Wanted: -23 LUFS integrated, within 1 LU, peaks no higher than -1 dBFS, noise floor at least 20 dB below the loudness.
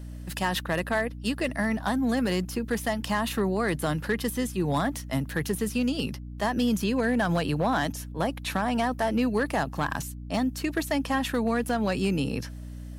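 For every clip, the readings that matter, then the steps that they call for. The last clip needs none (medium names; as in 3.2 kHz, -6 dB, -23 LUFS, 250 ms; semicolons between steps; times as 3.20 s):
clipped samples 0.6%; clipping level -18.0 dBFS; hum 60 Hz; highest harmonic 300 Hz; hum level -36 dBFS; loudness -28.0 LUFS; peak level -18.0 dBFS; loudness target -23.0 LUFS
-> clip repair -18 dBFS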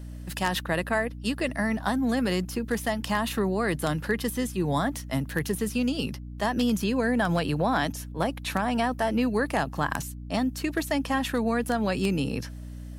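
clipped samples 0.0%; hum 60 Hz; highest harmonic 300 Hz; hum level -36 dBFS
-> de-hum 60 Hz, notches 5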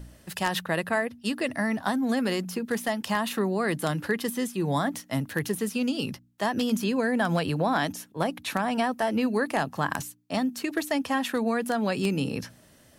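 hum not found; loudness -28.0 LUFS; peak level -8.5 dBFS; loudness target -23.0 LUFS
-> trim +5 dB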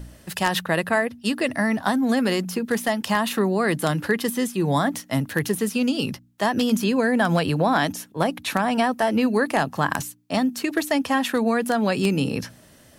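loudness -23.0 LUFS; peak level -3.5 dBFS; noise floor -52 dBFS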